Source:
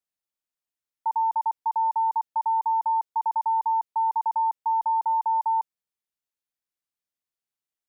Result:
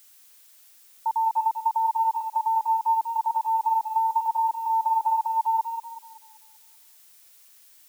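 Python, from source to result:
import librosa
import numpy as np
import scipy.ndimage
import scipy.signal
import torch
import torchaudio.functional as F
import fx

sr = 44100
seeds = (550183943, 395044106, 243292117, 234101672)

y = fx.dmg_noise_colour(x, sr, seeds[0], colour='blue', level_db=-54.0)
y = fx.echo_tape(y, sr, ms=192, feedback_pct=55, wet_db=-5.0, lp_hz=1000.0, drive_db=15.0, wow_cents=38)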